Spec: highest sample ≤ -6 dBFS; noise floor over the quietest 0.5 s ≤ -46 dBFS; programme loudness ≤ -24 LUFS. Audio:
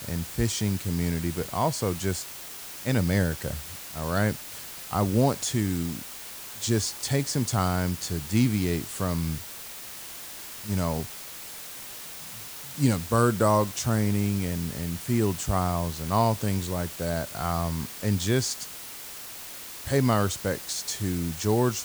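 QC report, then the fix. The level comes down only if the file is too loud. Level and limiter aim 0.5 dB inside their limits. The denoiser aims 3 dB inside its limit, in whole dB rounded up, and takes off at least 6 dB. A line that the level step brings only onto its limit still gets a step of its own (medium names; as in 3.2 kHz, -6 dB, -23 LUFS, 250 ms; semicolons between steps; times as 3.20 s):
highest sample -8.5 dBFS: pass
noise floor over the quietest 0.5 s -40 dBFS: fail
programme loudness -28.0 LUFS: pass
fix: noise reduction 9 dB, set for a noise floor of -40 dBFS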